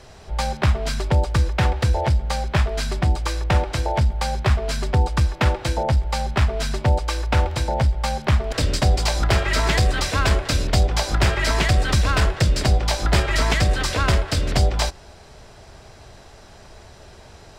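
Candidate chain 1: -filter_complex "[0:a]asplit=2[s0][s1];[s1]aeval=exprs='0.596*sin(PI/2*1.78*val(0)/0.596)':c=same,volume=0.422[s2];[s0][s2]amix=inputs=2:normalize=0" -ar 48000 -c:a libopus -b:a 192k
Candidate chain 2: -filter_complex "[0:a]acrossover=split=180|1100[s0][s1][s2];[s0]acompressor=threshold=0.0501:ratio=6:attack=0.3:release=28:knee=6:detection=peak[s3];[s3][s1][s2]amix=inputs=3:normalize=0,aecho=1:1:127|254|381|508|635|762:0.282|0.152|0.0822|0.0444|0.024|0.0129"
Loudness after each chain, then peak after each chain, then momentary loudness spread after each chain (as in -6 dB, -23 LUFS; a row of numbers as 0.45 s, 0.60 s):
-15.0 LUFS, -23.5 LUFS; -3.0 dBFS, -5.5 dBFS; 4 LU, 5 LU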